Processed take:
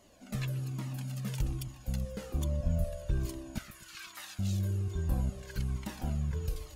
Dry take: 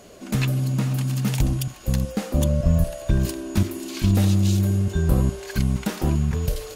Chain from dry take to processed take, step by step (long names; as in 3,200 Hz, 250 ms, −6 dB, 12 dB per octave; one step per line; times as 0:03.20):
0:03.58–0:04.39: high-pass with resonance 1,400 Hz, resonance Q 2.3
delay with a low-pass on its return 124 ms, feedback 51%, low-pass 3,500 Hz, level −15 dB
flanger whose copies keep moving one way falling 1.2 Hz
level −9 dB